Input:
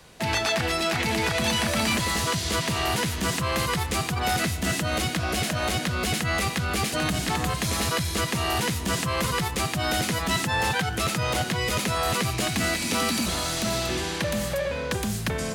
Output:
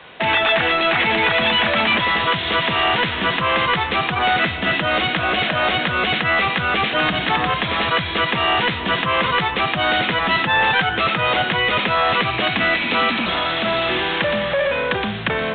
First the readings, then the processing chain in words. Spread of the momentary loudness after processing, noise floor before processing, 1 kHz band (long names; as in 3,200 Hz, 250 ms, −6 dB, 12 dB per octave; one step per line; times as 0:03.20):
4 LU, −31 dBFS, +9.5 dB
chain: high-pass filter 1,300 Hz 6 dB per octave
spectral tilt −1.5 dB per octave
in parallel at +2.5 dB: hard clipping −33.5 dBFS, distortion −7 dB
on the sum: level +9 dB
A-law companding 64 kbit/s 8,000 Hz